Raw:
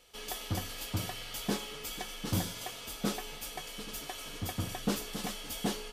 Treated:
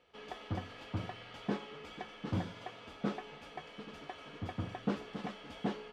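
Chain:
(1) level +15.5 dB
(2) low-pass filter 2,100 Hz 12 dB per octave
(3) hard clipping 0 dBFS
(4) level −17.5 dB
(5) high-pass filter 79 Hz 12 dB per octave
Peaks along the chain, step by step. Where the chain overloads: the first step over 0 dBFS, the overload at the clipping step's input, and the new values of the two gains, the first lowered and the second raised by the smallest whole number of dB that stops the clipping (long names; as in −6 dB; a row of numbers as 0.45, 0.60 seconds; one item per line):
−3.0, −3.5, −3.5, −21.0, −20.5 dBFS
no step passes full scale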